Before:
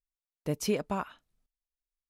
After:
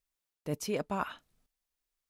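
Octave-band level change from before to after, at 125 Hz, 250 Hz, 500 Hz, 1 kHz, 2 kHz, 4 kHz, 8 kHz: -3.5, -4.0, -3.0, +0.5, 0.0, -3.5, -3.5 dB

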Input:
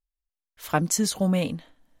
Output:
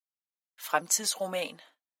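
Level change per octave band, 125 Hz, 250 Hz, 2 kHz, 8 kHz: -23.0, -19.5, -0.5, -0.5 dB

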